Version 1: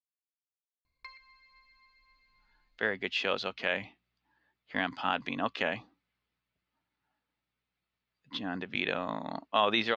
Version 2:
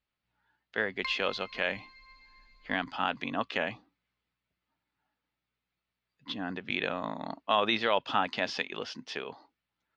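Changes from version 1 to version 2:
speech: entry -2.05 s; background +10.5 dB

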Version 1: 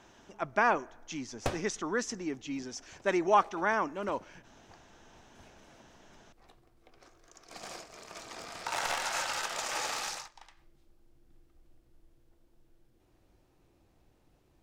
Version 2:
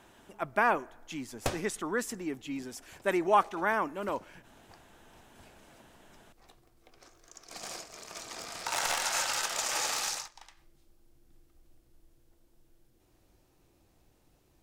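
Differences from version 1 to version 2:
speech: remove synth low-pass 6000 Hz, resonance Q 4.3; master: add high shelf 5100 Hz +9.5 dB

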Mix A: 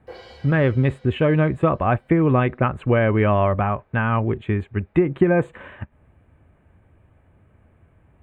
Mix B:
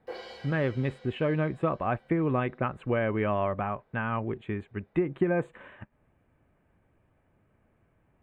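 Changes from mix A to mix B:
speech -8.5 dB; master: add bell 75 Hz -9.5 dB 1.1 oct

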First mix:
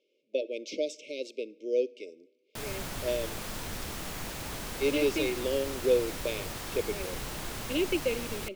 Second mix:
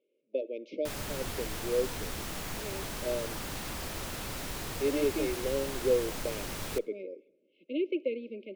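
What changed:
speech: add tape spacing loss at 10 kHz 39 dB; background: entry -1.70 s

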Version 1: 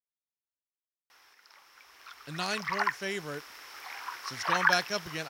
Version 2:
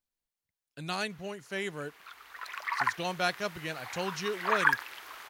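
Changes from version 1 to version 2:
speech: entry -1.50 s; master: add bell 5400 Hz -14.5 dB 0.24 oct

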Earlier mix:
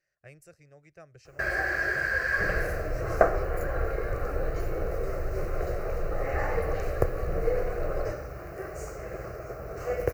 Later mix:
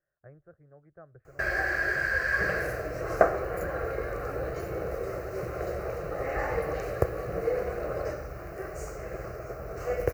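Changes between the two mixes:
speech: add steep low-pass 1600 Hz 48 dB/oct; second sound: add HPF 150 Hz 12 dB/oct

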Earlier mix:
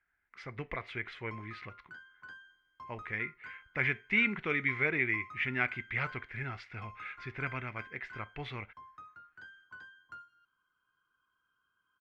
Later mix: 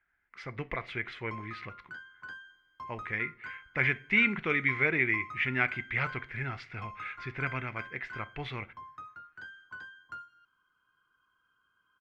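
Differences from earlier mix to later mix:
background +5.0 dB; reverb: on

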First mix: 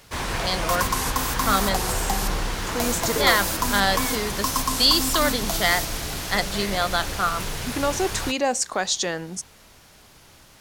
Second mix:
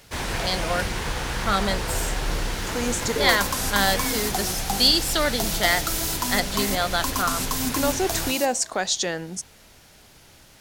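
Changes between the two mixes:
second sound: entry +2.60 s; master: add bell 1100 Hz -5 dB 0.4 oct

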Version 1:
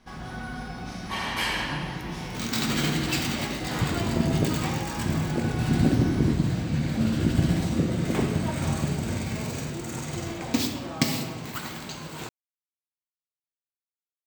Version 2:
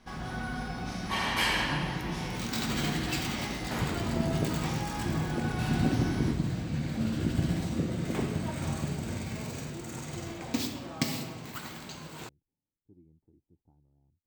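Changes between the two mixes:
speech: unmuted; second sound -6.0 dB

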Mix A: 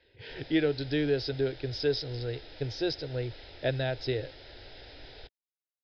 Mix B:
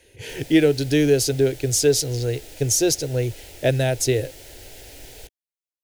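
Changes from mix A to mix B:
speech +5.0 dB; master: remove rippled Chebyshev low-pass 5200 Hz, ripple 6 dB

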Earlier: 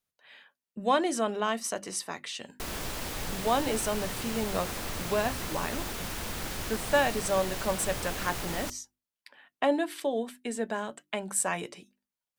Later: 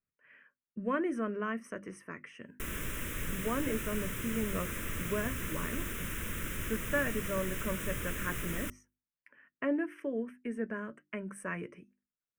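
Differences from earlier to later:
speech: add running mean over 12 samples; master: add fixed phaser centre 1900 Hz, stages 4

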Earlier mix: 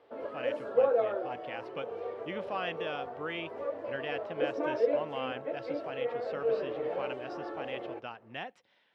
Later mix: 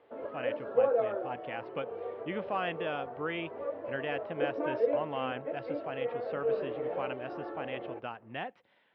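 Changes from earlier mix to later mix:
speech +4.0 dB; master: add air absorption 310 m

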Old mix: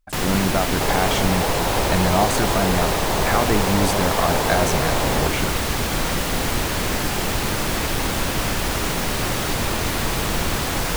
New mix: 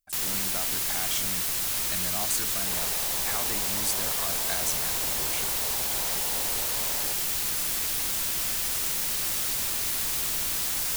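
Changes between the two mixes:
second sound: entry +1.85 s; master: add pre-emphasis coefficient 0.9

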